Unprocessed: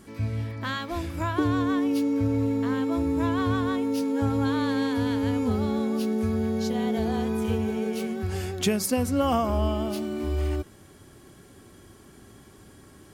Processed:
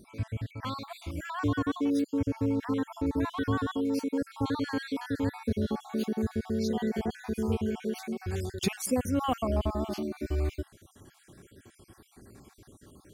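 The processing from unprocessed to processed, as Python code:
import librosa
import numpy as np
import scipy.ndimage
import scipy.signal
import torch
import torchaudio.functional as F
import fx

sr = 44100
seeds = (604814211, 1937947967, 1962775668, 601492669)

y = fx.spec_dropout(x, sr, seeds[0], share_pct=49)
y = y * 10.0 ** (-2.0 / 20.0)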